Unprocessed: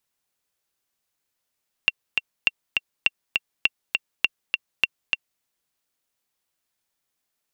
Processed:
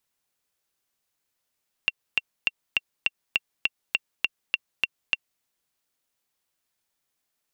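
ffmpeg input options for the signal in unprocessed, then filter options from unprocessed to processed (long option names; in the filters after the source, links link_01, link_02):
-f lavfi -i "aevalsrc='pow(10,(-4-3.5*gte(mod(t,2*60/203),60/203))/20)*sin(2*PI*2740*mod(t,60/203))*exp(-6.91*mod(t,60/203)/0.03)':duration=3.54:sample_rate=44100"
-af "alimiter=limit=-8.5dB:level=0:latency=1:release=131"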